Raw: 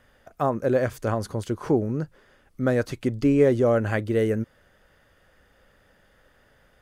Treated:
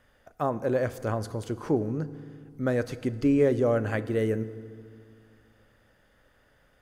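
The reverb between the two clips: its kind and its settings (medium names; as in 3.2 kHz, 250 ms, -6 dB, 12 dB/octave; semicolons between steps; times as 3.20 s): FDN reverb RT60 2.1 s, low-frequency decay 1.3×, high-frequency decay 0.7×, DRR 14 dB; trim -4 dB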